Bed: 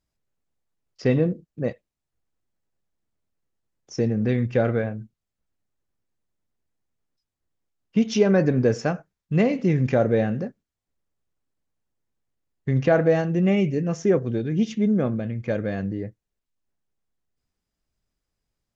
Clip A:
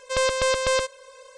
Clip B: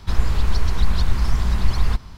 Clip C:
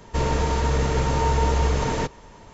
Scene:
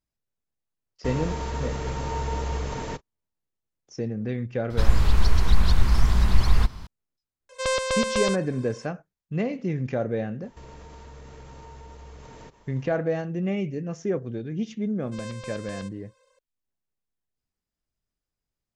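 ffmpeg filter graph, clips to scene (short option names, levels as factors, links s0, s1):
-filter_complex "[3:a]asplit=2[s0][s1];[1:a]asplit=2[s2][s3];[0:a]volume=0.447[s4];[s0]agate=range=0.00501:threshold=0.0158:ratio=16:release=100:detection=peak[s5];[s1]acompressor=threshold=0.0282:ratio=6:attack=3.2:release=140:knee=1:detection=peak[s6];[s5]atrim=end=2.53,asetpts=PTS-STARTPTS,volume=0.398,afade=t=in:d=0.004:c=hsin,afade=t=out:st=2.526:d=0.004:c=hsin,adelay=900[s7];[2:a]atrim=end=2.17,asetpts=PTS-STARTPTS,afade=t=in:d=0.004:c=hsin,afade=t=out:st=2.166:d=0.004:c=hsin,adelay=4700[s8];[s2]atrim=end=1.37,asetpts=PTS-STARTPTS,volume=0.75,afade=t=in:d=0.004:c=hsin,afade=t=out:st=1.366:d=0.004:c=hsin,adelay=7490[s9];[s6]atrim=end=2.53,asetpts=PTS-STARTPTS,volume=0.299,afade=t=in:d=0.004:c=hsin,afade=t=out:st=2.526:d=0.004:c=hsin,adelay=10430[s10];[s3]atrim=end=1.37,asetpts=PTS-STARTPTS,volume=0.133,afade=t=in:d=0.004:c=hsin,afade=t=out:st=1.366:d=0.004:c=hsin,adelay=15020[s11];[s4][s7][s8][s9][s10][s11]amix=inputs=6:normalize=0"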